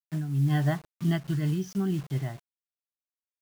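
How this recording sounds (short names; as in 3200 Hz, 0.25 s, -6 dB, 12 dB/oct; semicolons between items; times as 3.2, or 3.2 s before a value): a quantiser's noise floor 8-bit, dither none; noise-modulated level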